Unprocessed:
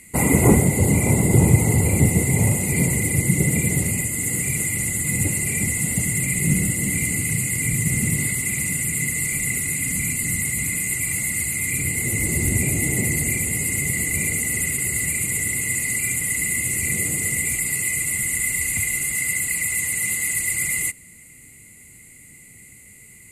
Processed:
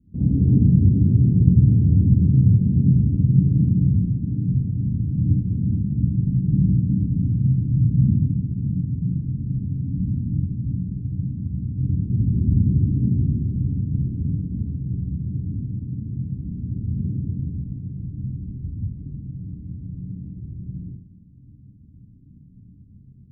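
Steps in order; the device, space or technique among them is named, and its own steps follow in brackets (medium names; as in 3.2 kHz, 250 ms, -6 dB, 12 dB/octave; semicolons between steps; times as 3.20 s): club heard from the street (peak limiter -12.5 dBFS, peak gain reduction 10 dB; low-pass 240 Hz 24 dB/octave; reverberation RT60 0.50 s, pre-delay 38 ms, DRR -8 dB); trim -2 dB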